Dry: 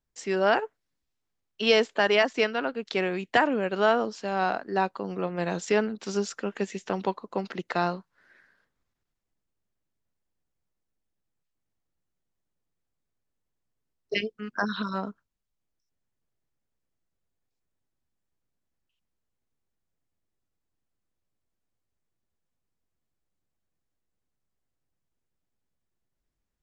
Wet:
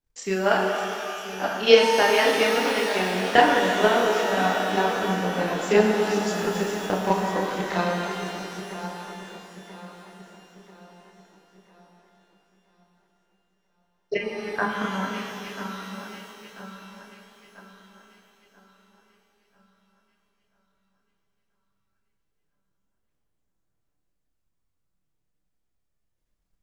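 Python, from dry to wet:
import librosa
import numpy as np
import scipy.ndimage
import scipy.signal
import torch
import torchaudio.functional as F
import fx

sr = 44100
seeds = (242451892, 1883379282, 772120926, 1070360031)

y = fx.reverse_delay_fb(x, sr, ms=494, feedback_pct=66, wet_db=-8.5)
y = fx.lowpass(y, sr, hz=2300.0, slope=24, at=(14.15, 15.08))
y = fx.chorus_voices(y, sr, voices=6, hz=0.36, base_ms=30, depth_ms=3.5, mix_pct=50)
y = fx.transient(y, sr, attack_db=8, sustain_db=4)
y = fx.rev_shimmer(y, sr, seeds[0], rt60_s=2.7, semitones=12, shimmer_db=-8, drr_db=1.5)
y = y * librosa.db_to_amplitude(1.0)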